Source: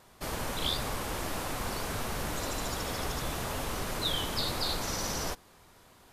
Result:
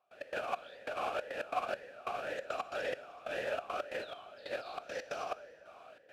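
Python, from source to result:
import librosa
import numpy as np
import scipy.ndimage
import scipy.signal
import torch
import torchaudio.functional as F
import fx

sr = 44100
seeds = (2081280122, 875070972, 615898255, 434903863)

y = fx.step_gate(x, sr, bpm=138, pattern='.x.xx...xxx', floor_db=-24.0, edge_ms=4.5)
y = fx.over_compress(y, sr, threshold_db=-36.0, ratio=-0.5)
y = fx.peak_eq(y, sr, hz=1800.0, db=3.0, octaves=1.4)
y = fx.rev_plate(y, sr, seeds[0], rt60_s=2.8, hf_ratio=0.6, predelay_ms=0, drr_db=12.0)
y = fx.vowel_sweep(y, sr, vowels='a-e', hz=1.9)
y = F.gain(torch.from_numpy(y), 11.0).numpy()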